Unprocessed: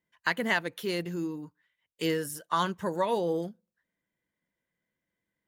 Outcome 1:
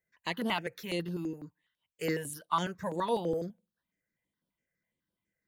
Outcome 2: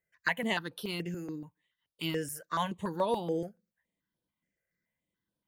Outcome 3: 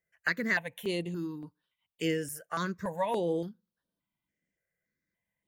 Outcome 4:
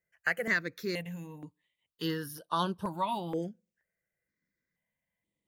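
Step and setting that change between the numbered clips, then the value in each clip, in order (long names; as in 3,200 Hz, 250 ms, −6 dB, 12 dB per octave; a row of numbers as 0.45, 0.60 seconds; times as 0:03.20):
step-sequenced phaser, speed: 12, 7, 3.5, 2.1 Hertz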